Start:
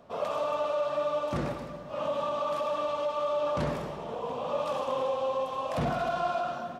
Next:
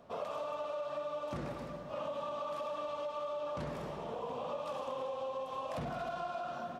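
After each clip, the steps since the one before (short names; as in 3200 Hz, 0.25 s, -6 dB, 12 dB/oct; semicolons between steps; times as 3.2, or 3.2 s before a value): compressor, threshold -33 dBFS, peak gain reduction 8.5 dB; gain -3 dB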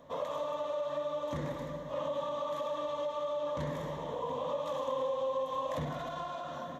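ripple EQ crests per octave 1.1, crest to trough 10 dB; gain +1.5 dB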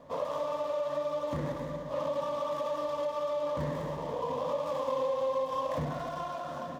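median filter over 15 samples; gain +3 dB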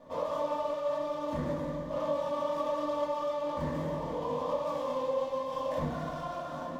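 shoebox room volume 270 m³, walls furnished, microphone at 2.5 m; gain -5 dB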